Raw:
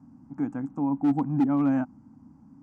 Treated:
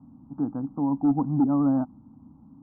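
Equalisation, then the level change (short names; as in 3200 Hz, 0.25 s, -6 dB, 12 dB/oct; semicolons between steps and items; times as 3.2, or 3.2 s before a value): steep low-pass 1300 Hz 48 dB/oct; tilt -2.5 dB/oct; low shelf 390 Hz -7.5 dB; +1.5 dB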